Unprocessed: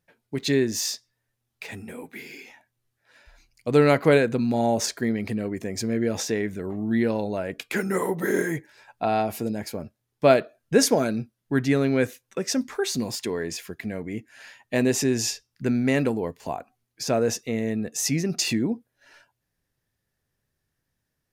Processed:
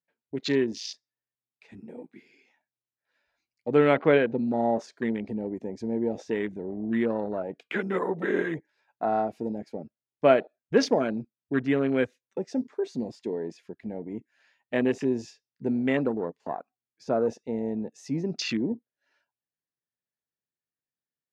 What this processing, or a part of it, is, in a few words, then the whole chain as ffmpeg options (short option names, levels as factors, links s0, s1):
over-cleaned archive recording: -filter_complex "[0:a]highpass=180,lowpass=5400,afwtdn=0.0251,asettb=1/sr,asplit=3[s0][s1][s2];[s0]atrim=end=3.944[s3];[s1]atrim=start=3.94:end=4.47,asetpts=PTS-STARTPTS,afade=t=in:d=0.004:c=qsin,afade=t=out:st=0.526:d=0.004:c=qsin,lowpass=f=5000:w=0.5412,lowpass=f=5000:w=1.3066[s4];[s2]atrim=start=4.466[s5];[s3][s4]acrossfade=d=0.004:c1=hsin:c2=qsin[s6];[s6][s5]acrossfade=d=0.004:c1=qsin:c2=hsin,volume=0.794"